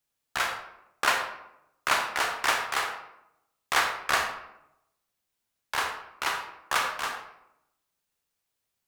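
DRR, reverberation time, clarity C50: 3.0 dB, 0.85 s, 6.0 dB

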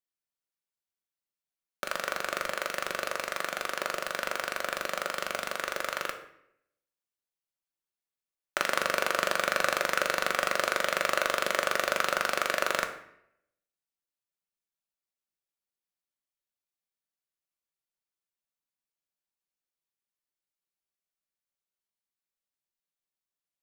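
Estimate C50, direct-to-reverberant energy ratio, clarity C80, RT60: 10.0 dB, 5.0 dB, 12.5 dB, 0.75 s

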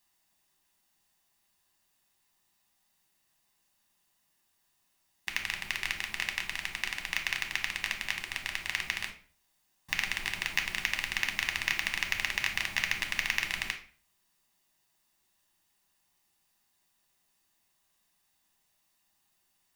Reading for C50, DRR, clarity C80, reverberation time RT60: 10.5 dB, 4.0 dB, 15.5 dB, 0.45 s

